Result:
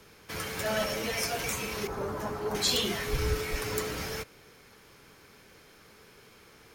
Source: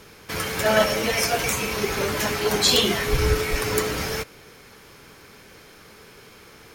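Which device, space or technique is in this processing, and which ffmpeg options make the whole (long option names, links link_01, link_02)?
one-band saturation: -filter_complex "[0:a]asettb=1/sr,asplit=3[link_01][link_02][link_03];[link_01]atrim=end=1.874[link_04];[link_02]atrim=start=1.87:end=2.55,asetpts=PTS-STARTPTS,afade=type=in:duration=0.004:curve=qsin,afade=type=out:start_time=0.676:duration=0.004:curve=qsin,highshelf=frequency=1600:width_type=q:width=1.5:gain=-12[link_05];[link_03]atrim=start=2.546[link_06];[link_04][link_05]acrossfade=duration=0.004:curve1=hsin:curve2=qsin[link_07];[link_07][link_06]acrossfade=duration=0.004:curve1=qsin:curve2=hsin,acrossover=split=210|3600[link_08][link_09][link_10];[link_09]asoftclip=type=tanh:threshold=-17.5dB[link_11];[link_08][link_11][link_10]amix=inputs=3:normalize=0,volume=-8dB"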